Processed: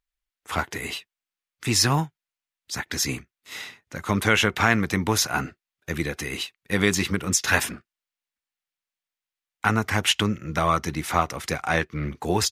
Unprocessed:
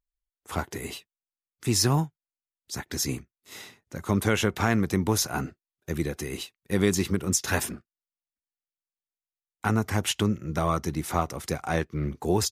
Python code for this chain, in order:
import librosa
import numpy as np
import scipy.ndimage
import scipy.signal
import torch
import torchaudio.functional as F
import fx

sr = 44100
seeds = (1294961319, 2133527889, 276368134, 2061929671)

y = fx.peak_eq(x, sr, hz=2200.0, db=9.5, octaves=2.5)
y = fx.notch(y, sr, hz=380.0, q=12.0)